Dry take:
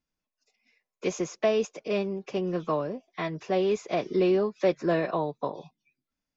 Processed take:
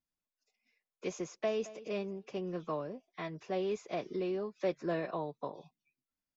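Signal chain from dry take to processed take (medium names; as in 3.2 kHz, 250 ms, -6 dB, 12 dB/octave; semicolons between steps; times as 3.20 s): 1.24–1.67 s: echo throw 220 ms, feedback 30%, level -17 dB; 4.04–4.60 s: compression 1.5:1, threshold -28 dBFS, peak gain reduction 3.5 dB; trim -9 dB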